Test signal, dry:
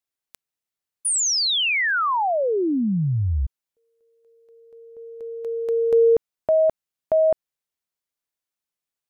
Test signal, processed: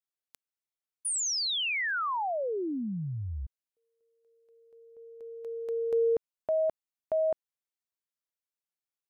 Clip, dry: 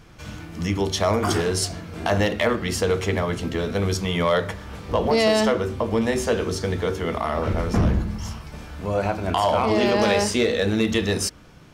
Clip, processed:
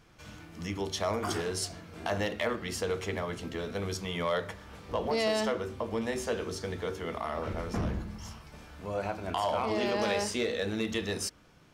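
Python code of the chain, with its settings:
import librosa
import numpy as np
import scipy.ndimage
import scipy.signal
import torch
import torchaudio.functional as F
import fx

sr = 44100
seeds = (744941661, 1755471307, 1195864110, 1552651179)

y = fx.low_shelf(x, sr, hz=240.0, db=-5.0)
y = F.gain(torch.from_numpy(y), -9.0).numpy()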